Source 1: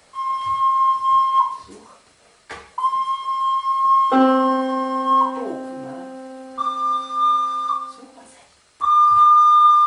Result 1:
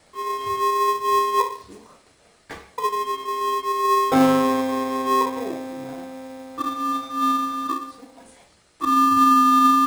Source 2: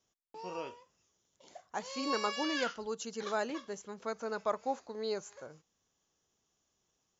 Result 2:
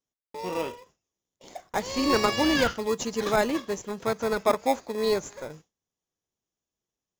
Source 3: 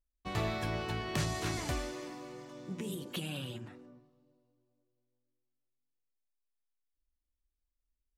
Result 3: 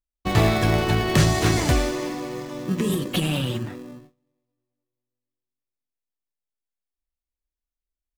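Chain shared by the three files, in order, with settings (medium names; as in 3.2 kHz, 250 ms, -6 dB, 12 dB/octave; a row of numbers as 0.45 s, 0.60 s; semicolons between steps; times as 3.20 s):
gate with hold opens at -50 dBFS; in parallel at -6 dB: sample-and-hold 30×; on the sum: peak normalisation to -6 dBFS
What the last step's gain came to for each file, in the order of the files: -3.5 dB, +8.5 dB, +13.0 dB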